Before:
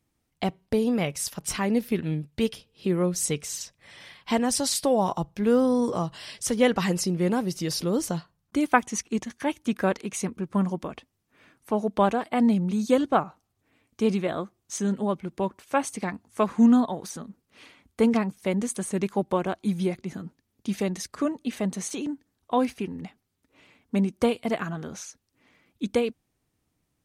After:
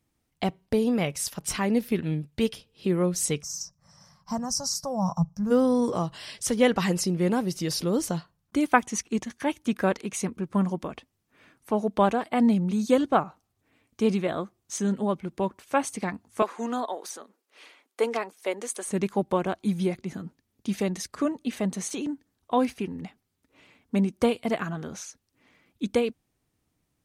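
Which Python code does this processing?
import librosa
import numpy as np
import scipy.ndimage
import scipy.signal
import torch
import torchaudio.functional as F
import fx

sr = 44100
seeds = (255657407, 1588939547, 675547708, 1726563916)

y = fx.curve_eq(x, sr, hz=(120.0, 170.0, 360.0, 550.0, 1200.0, 2200.0, 3500.0, 5600.0, 9200.0, 13000.0), db=(0, 8, -25, -8, -3, -25, -26, 5, -12, -5), at=(3.41, 5.5), fade=0.02)
y = fx.highpass(y, sr, hz=370.0, slope=24, at=(16.42, 18.88))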